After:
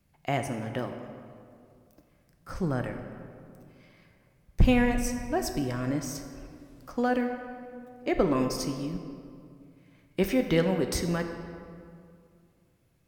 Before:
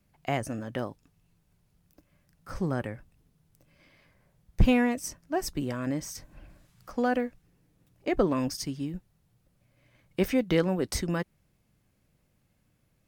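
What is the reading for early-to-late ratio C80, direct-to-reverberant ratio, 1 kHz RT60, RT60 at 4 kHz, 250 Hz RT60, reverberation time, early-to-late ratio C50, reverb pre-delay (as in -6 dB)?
7.5 dB, 5.5 dB, 2.3 s, 1.4 s, 2.5 s, 2.3 s, 7.0 dB, 4 ms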